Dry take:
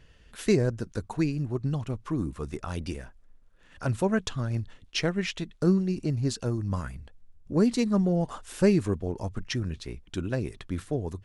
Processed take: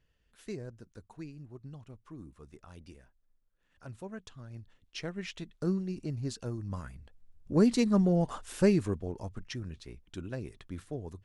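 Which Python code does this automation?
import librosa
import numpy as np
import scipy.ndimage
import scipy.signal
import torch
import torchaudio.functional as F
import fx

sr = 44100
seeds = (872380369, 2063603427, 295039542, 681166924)

y = fx.gain(x, sr, db=fx.line((4.4, -17.5), (5.42, -8.0), (6.95, -8.0), (7.58, -1.0), (8.41, -1.0), (9.53, -9.0)))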